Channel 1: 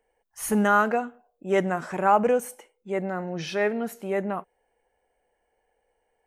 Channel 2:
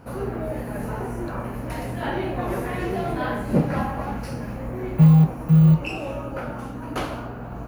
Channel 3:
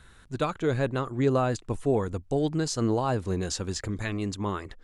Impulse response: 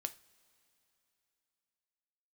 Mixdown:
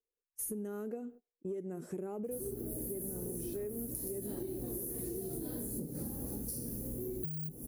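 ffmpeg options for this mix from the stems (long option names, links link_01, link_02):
-filter_complex "[0:a]agate=range=-21dB:threshold=-43dB:ratio=16:detection=peak,volume=-3.5dB[link_01];[1:a]aexciter=amount=7.4:drive=3.6:freq=4000,adelay=2250,volume=-4.5dB[link_02];[link_01][link_02]amix=inputs=2:normalize=0,firequalizer=gain_entry='entry(130,0);entry(400,7);entry(610,-11);entry(1000,-20);entry(11000,8)':delay=0.05:min_phase=1,acompressor=threshold=-27dB:ratio=6,volume=0dB,acompressor=threshold=-37dB:ratio=6"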